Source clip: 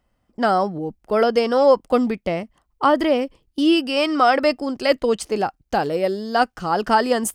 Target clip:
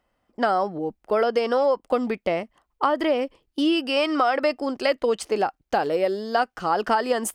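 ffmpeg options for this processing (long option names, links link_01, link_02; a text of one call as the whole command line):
ffmpeg -i in.wav -af "bass=frequency=250:gain=-10,treble=frequency=4000:gain=-5,acompressor=threshold=-19dB:ratio=6,volume=1.5dB" out.wav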